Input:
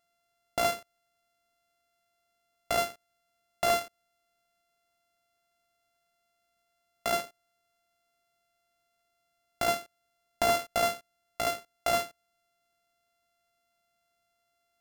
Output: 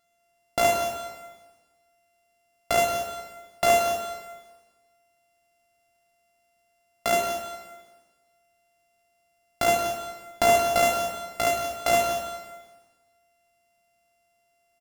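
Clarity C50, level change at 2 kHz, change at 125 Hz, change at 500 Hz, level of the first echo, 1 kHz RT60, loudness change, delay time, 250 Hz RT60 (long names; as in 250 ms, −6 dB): 4.0 dB, +6.5 dB, +6.0 dB, +8.0 dB, −10.5 dB, 1.3 s, +5.5 dB, 176 ms, 1.4 s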